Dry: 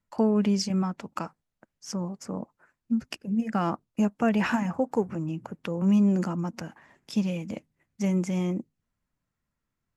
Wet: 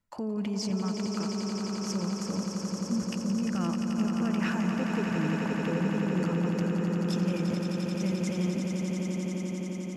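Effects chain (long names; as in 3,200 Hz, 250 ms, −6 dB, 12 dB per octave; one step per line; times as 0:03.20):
dynamic equaliser 800 Hz, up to −7 dB, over −44 dBFS, Q 1.8
brickwall limiter −25 dBFS, peak gain reduction 11 dB
echo that builds up and dies away 87 ms, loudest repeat 8, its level −7.5 dB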